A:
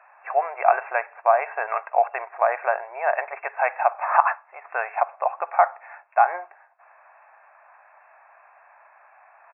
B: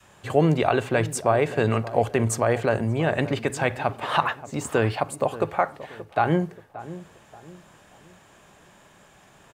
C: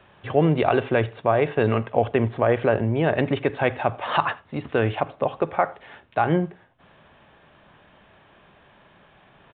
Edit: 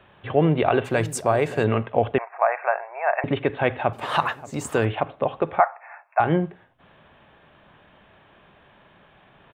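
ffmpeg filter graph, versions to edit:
-filter_complex "[1:a]asplit=2[s0][s1];[0:a]asplit=2[s2][s3];[2:a]asplit=5[s4][s5][s6][s7][s8];[s4]atrim=end=0.86[s9];[s0]atrim=start=0.84:end=1.65[s10];[s5]atrim=start=1.63:end=2.182[s11];[s2]atrim=start=2.178:end=3.242[s12];[s6]atrim=start=3.238:end=3.932[s13];[s1]atrim=start=3.928:end=4.852[s14];[s7]atrim=start=4.848:end=5.602[s15];[s3]atrim=start=5.598:end=6.202[s16];[s8]atrim=start=6.198[s17];[s9][s10]acrossfade=d=0.02:c1=tri:c2=tri[s18];[s18][s11]acrossfade=d=0.02:c1=tri:c2=tri[s19];[s19][s12]acrossfade=d=0.004:c1=hsin:c2=hsin[s20];[s20][s13]acrossfade=d=0.004:c1=hsin:c2=hsin[s21];[s21][s14]acrossfade=d=0.004:c1=hsin:c2=hsin[s22];[s22][s15]acrossfade=d=0.004:c1=hsin:c2=hsin[s23];[s23][s16]acrossfade=d=0.004:c1=hsin:c2=hsin[s24];[s24][s17]acrossfade=d=0.004:c1=hsin:c2=hsin"

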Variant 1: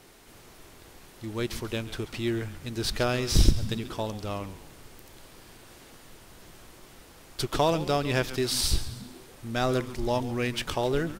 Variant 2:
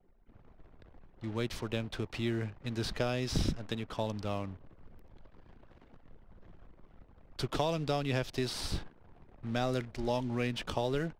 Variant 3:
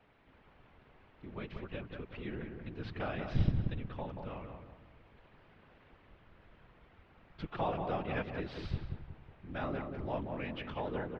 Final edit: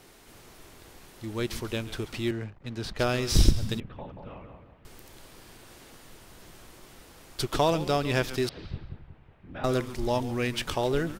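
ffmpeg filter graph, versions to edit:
-filter_complex "[2:a]asplit=2[s0][s1];[0:a]asplit=4[s2][s3][s4][s5];[s2]atrim=end=2.312[s6];[1:a]atrim=start=2.308:end=2.992[s7];[s3]atrim=start=2.988:end=3.802[s8];[s0]atrim=start=3.798:end=4.852[s9];[s4]atrim=start=4.848:end=8.492[s10];[s1]atrim=start=8.488:end=9.642[s11];[s5]atrim=start=9.638[s12];[s6][s7]acrossfade=d=0.004:c1=hsin:c2=hsin[s13];[s13][s8]acrossfade=d=0.004:c1=hsin:c2=hsin[s14];[s14][s9]acrossfade=d=0.004:c1=hsin:c2=hsin[s15];[s15][s10]acrossfade=d=0.004:c1=hsin:c2=hsin[s16];[s16][s11]acrossfade=d=0.004:c1=hsin:c2=hsin[s17];[s17][s12]acrossfade=d=0.004:c1=hsin:c2=hsin"

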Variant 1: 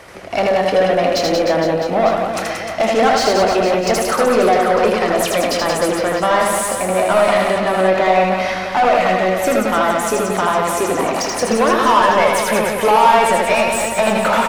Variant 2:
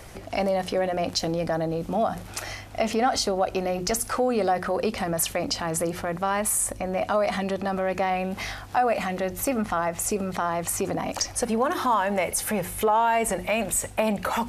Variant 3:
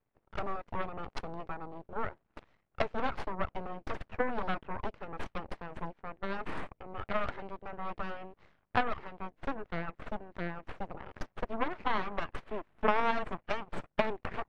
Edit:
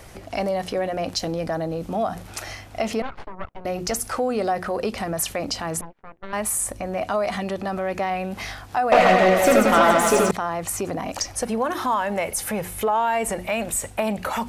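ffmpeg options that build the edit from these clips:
-filter_complex "[2:a]asplit=2[s0][s1];[1:a]asplit=4[s2][s3][s4][s5];[s2]atrim=end=3.022[s6];[s0]atrim=start=3.018:end=3.652[s7];[s3]atrim=start=3.648:end=5.812[s8];[s1]atrim=start=5.808:end=6.332[s9];[s4]atrim=start=6.328:end=8.922[s10];[0:a]atrim=start=8.918:end=10.312[s11];[s5]atrim=start=10.308[s12];[s6][s7]acrossfade=d=0.004:c1=hsin:c2=hsin[s13];[s13][s8]acrossfade=d=0.004:c1=hsin:c2=hsin[s14];[s14][s9]acrossfade=d=0.004:c1=hsin:c2=hsin[s15];[s15][s10]acrossfade=d=0.004:c1=hsin:c2=hsin[s16];[s16][s11]acrossfade=d=0.004:c1=hsin:c2=hsin[s17];[s17][s12]acrossfade=d=0.004:c1=hsin:c2=hsin"

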